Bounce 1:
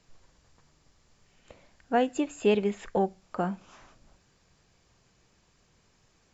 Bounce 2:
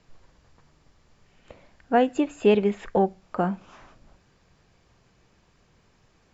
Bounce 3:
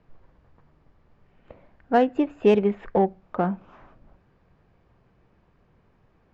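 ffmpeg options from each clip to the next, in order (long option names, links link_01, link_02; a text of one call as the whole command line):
ffmpeg -i in.wav -af "aemphasis=mode=reproduction:type=50fm,volume=4.5dB" out.wav
ffmpeg -i in.wav -af "adynamicsmooth=sensitivity=1:basefreq=2000,volume=1dB" out.wav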